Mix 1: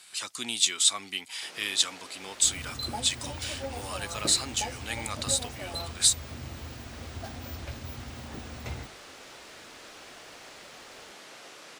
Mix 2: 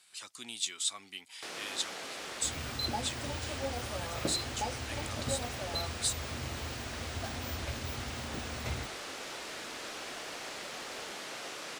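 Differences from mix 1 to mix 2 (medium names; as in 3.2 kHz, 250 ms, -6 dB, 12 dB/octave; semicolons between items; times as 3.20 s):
speech -10.5 dB; first sound +5.5 dB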